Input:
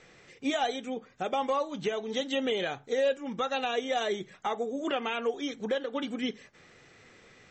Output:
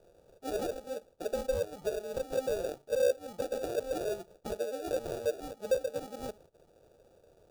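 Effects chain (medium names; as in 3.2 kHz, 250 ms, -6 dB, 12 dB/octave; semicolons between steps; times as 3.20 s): sample-and-hold 42×; graphic EQ 125/250/500/2000 Hz -4/-8/+10/-10 dB; trim -7 dB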